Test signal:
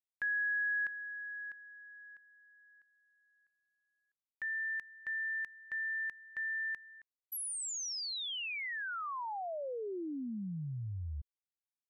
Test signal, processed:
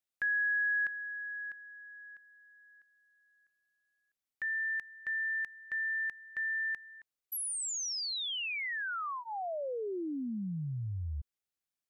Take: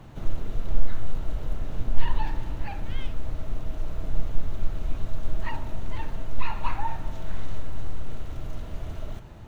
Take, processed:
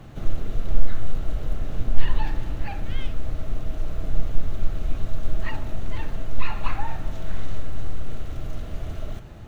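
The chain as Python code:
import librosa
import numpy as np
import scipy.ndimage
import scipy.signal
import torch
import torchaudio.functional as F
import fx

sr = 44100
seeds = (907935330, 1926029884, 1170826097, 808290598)

y = fx.notch(x, sr, hz=940.0, q=6.3)
y = F.gain(torch.from_numpy(y), 3.0).numpy()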